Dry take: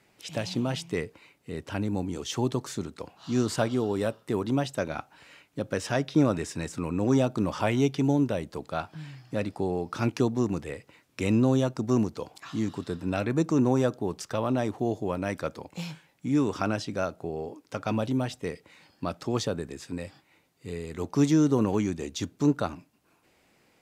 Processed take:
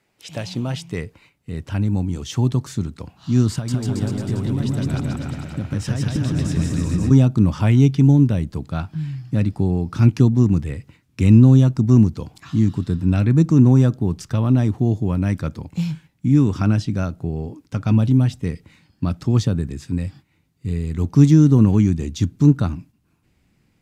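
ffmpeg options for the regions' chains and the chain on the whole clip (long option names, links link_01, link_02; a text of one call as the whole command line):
ffmpeg -i in.wav -filter_complex "[0:a]asettb=1/sr,asplit=3[link_01][link_02][link_03];[link_01]atrim=end=3.524[link_04];[link_02]atrim=start=3.52:end=7.11,asetpts=PTS-STARTPTS,afade=type=in:duration=0.004:curve=qsin,afade=type=out:start_time=3.586:duration=0.004:curve=qsin,acompressor=threshold=-29dB:ratio=10:attack=3.2:release=140:knee=1:detection=peak,aecho=1:1:160|304|433.6|550.2|655.2|749.7|834.7:0.794|0.631|0.501|0.398|0.316|0.251|0.2,atrim=end_sample=158319[link_05];[link_03]atrim=start=7.106[link_06];[link_04][link_05]acrossfade=duration=0.004:curve1=hsin:curve2=qsin[link_07];[link_07][link_06]acrossfade=duration=0.004:curve1=qsin:curve2=hsin,agate=range=-6dB:threshold=-54dB:ratio=16:detection=peak,asubboost=boost=8.5:cutoff=180,volume=2dB" out.wav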